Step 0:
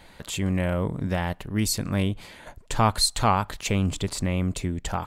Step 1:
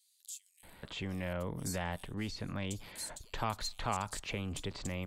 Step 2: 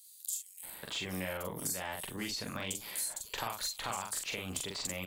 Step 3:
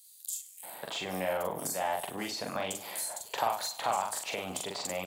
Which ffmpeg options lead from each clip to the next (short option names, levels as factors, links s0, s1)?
-filter_complex "[0:a]acrossover=split=2700|6900[s0][s1][s2];[s0]acompressor=threshold=0.0562:ratio=4[s3];[s1]acompressor=threshold=0.0178:ratio=4[s4];[s2]acompressor=threshold=0.0112:ratio=4[s5];[s3][s4][s5]amix=inputs=3:normalize=0,acrossover=split=300|990|2200[s6][s7][s8][s9];[s6]asoftclip=type=tanh:threshold=0.0299[s10];[s10][s7][s8][s9]amix=inputs=4:normalize=0,acrossover=split=5000[s11][s12];[s11]adelay=630[s13];[s13][s12]amix=inputs=2:normalize=0,volume=0.501"
-filter_complex "[0:a]aemphasis=mode=production:type=bsi,acompressor=threshold=0.0126:ratio=6,asplit=2[s0][s1];[s1]adelay=43,volume=0.708[s2];[s0][s2]amix=inputs=2:normalize=0,volume=1.41"
-af "highpass=130,equalizer=f=720:t=o:w=1.1:g=13,aecho=1:1:101|202|303|404:0.15|0.0703|0.0331|0.0155"